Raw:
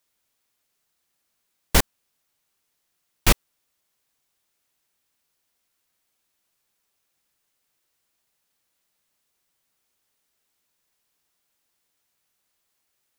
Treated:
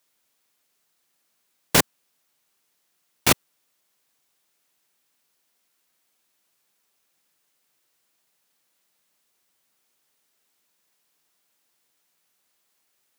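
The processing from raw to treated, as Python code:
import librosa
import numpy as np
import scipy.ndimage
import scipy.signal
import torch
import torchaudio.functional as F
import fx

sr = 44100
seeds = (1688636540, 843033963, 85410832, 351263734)

y = np.minimum(x, 2.0 * 10.0 ** (-13.0 / 20.0) - x)
y = scipy.signal.sosfilt(scipy.signal.butter(2, 140.0, 'highpass', fs=sr, output='sos'), y)
y = y * 10.0 ** (3.5 / 20.0)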